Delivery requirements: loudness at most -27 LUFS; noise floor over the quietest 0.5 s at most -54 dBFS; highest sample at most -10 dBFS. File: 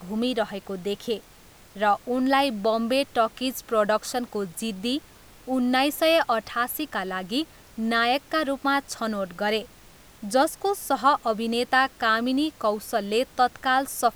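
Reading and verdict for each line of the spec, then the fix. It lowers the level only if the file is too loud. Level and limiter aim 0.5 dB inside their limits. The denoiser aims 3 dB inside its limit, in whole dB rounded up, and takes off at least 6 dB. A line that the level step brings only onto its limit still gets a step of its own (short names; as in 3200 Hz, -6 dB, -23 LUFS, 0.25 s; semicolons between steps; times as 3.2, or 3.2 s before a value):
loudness -25.0 LUFS: fail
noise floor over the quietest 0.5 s -51 dBFS: fail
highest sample -6.5 dBFS: fail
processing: denoiser 6 dB, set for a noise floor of -51 dBFS; gain -2.5 dB; limiter -10.5 dBFS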